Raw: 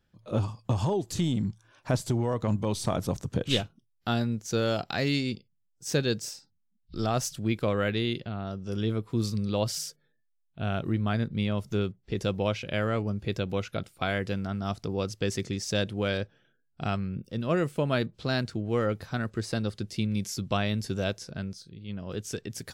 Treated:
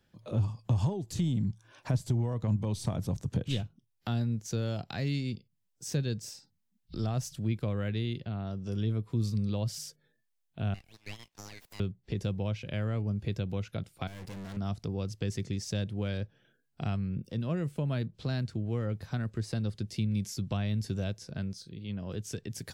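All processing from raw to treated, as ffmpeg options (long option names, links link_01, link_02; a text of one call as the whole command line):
ffmpeg -i in.wav -filter_complex "[0:a]asettb=1/sr,asplit=3[link_01][link_02][link_03];[link_01]atrim=end=10.744[link_04];[link_02]atrim=start=10.74:end=11.8,asetpts=PTS-STARTPTS,afade=type=in:duration=0.004:curve=qsin,afade=type=out:start_time=1.056:duration=0.004:curve=qsin,highpass=frequency=1100:width=0.5412,highpass=frequency=1100:width=1.3066,equalizer=frequency=2600:width_type=o:width=1.4:gain=-9,aeval=exprs='abs(val(0))':channel_layout=same[link_05];[link_03]atrim=start=11.796[link_06];[link_04][link_05]acrossfade=duration=0.004:curve1=hsin:curve2=qsin[link_07];[link_07][link_06]acrossfade=duration=0.004:curve1=qsin:curve2=hsin,asettb=1/sr,asplit=3[link_08][link_09][link_10];[link_08]atrim=end=14.074[link_11];[link_09]atrim=start=14.07:end=14.57,asetpts=PTS-STARTPTS,afade=type=in:duration=0.004:curve=qsin,afade=type=out:start_time=0.496:duration=0.004:curve=qsin,highshelf=frequency=5400:gain=5.5,acrusher=bits=6:mix=0:aa=0.5,aeval=exprs='(tanh(100*val(0)+0.7)-tanh(0.7))/100':channel_layout=same[link_12];[link_10]atrim=start=14.566[link_13];[link_11][link_12]acrossfade=duration=0.004:curve1=hsin:curve2=qsin[link_14];[link_14][link_13]acrossfade=duration=0.004:curve1=qsin:curve2=hsin,equalizer=frequency=1300:width=3.6:gain=-3.5,acrossover=split=170[link_15][link_16];[link_16]acompressor=threshold=-47dB:ratio=2.5[link_17];[link_15][link_17]amix=inputs=2:normalize=0,lowshelf=frequency=62:gain=-9,volume=4dB" out.wav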